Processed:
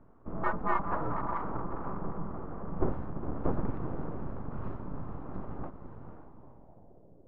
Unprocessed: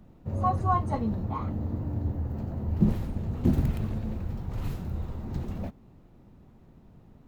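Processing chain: diffused feedback echo 0.496 s, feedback 44%, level -8 dB; full-wave rectifier; low-pass sweep 1200 Hz -> 540 Hz, 6.24–7.19; gain -4.5 dB

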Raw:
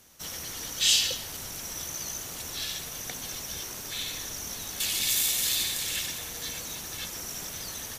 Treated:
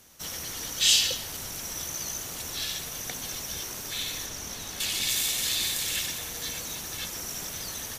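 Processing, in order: 4.26–5.63 high shelf 8500 Hz -7 dB; gain +1.5 dB

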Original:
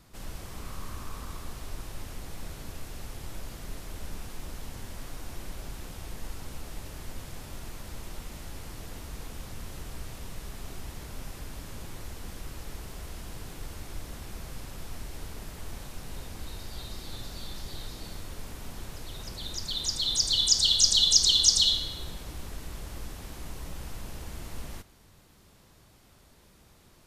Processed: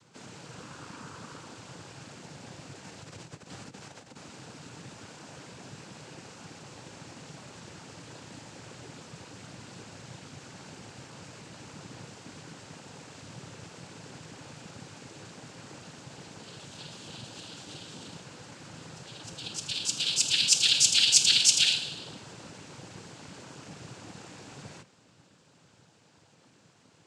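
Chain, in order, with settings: 2.84–4.16 negative-ratio compressor -39 dBFS, ratio -1; noise vocoder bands 8

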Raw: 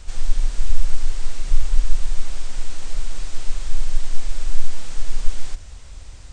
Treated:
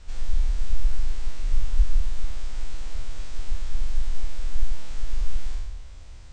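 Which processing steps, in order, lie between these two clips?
spectral trails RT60 1.25 s; air absorption 60 m; gain -7.5 dB

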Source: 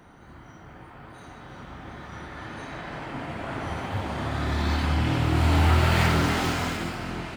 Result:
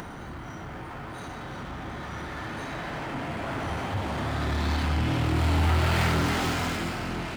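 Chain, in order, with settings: power-law curve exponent 0.7; upward compressor, threshold -28 dBFS; gain -5.5 dB

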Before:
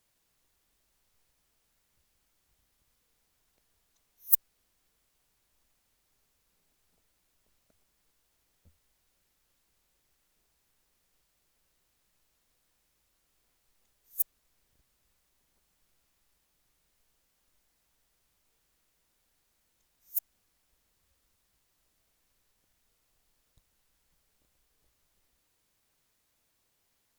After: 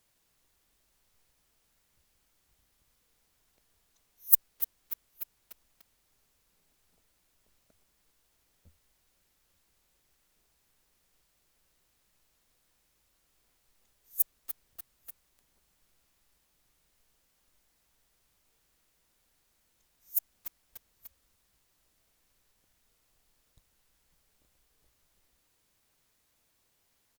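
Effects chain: echo 0.886 s -21.5 dB; lo-fi delay 0.294 s, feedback 55%, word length 6-bit, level -11 dB; gain +2 dB

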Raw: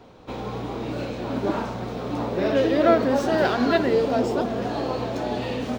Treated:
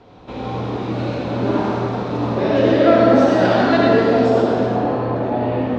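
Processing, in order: LPF 5200 Hz 12 dB/oct, from 4.66 s 1800 Hz; reverb RT60 1.8 s, pre-delay 53 ms, DRR -3.5 dB; gain +1 dB

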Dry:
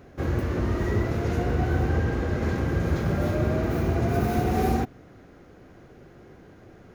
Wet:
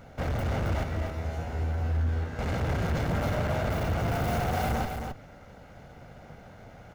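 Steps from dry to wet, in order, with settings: minimum comb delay 1.4 ms; 0.83–2.39 resonator 81 Hz, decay 0.55 s, harmonics all, mix 90%; hard clip -28.5 dBFS, distortion -7 dB; echo 0.27 s -6 dB; gain +2 dB

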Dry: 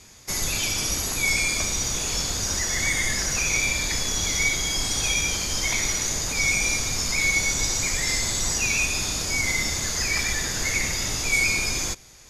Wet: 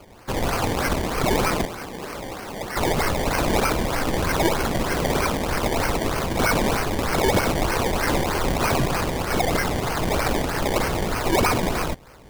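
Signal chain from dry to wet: 1.65–2.77 three-band isolator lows -22 dB, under 210 Hz, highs -22 dB, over 3300 Hz; decimation with a swept rate 23×, swing 100% 3.2 Hz; gain +2.5 dB

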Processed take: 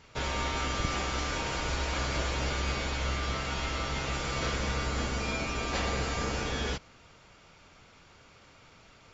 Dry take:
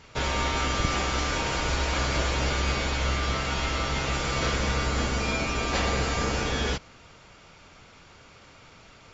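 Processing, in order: 2.13–3.23 crackle 60/s -50 dBFS; gain -5 dB

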